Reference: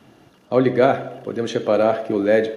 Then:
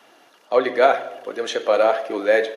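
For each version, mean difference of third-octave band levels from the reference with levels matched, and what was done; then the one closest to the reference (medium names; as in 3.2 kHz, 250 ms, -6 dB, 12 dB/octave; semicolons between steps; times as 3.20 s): 6.0 dB: high-pass 610 Hz 12 dB/octave; flange 2 Hz, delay 0.9 ms, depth 3.5 ms, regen +71%; resampled via 32 kHz; trim +8 dB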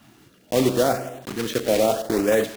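8.0 dB: block-companded coder 3-bit; peak limiter -8.5 dBFS, peak gain reduction 6 dB; LFO notch saw up 0.82 Hz 400–5500 Hz; trim -1.5 dB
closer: first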